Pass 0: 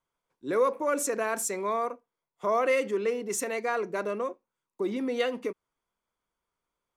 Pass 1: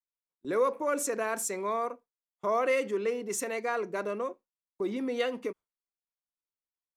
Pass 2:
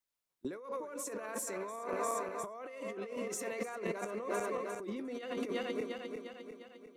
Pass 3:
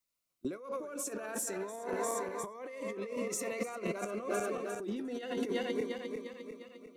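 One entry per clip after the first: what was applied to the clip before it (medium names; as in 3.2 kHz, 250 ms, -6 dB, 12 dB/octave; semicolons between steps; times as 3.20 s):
gate with hold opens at -37 dBFS; trim -2 dB
backward echo that repeats 176 ms, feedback 72%, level -11 dB; compressor with a negative ratio -39 dBFS, ratio -1; trim -1 dB
Shepard-style phaser rising 0.29 Hz; trim +3.5 dB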